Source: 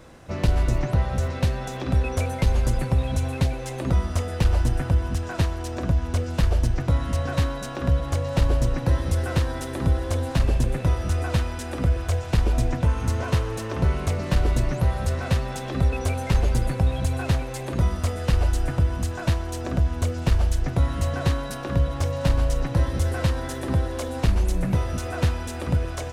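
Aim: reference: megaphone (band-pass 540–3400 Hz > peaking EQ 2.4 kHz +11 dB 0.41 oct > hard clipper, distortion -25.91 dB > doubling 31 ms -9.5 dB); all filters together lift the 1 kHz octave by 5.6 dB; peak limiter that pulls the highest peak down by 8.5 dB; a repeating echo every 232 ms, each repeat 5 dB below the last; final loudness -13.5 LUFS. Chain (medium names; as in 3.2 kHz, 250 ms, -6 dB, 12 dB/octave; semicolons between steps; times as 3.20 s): peaking EQ 1 kHz +7.5 dB; peak limiter -16.5 dBFS; band-pass 540–3400 Hz; peaking EQ 2.4 kHz +11 dB 0.41 oct; feedback delay 232 ms, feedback 56%, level -5 dB; hard clipper -20.5 dBFS; doubling 31 ms -9.5 dB; trim +17 dB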